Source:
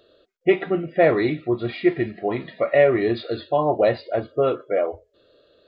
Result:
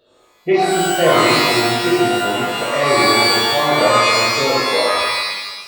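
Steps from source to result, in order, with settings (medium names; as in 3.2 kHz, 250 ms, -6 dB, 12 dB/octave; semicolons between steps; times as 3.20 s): pitch-shifted reverb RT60 1.2 s, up +12 st, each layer -2 dB, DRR -6.5 dB; trim -4 dB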